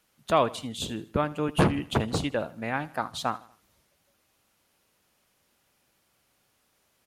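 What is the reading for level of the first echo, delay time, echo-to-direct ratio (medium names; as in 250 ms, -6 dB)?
-19.5 dB, 79 ms, -18.5 dB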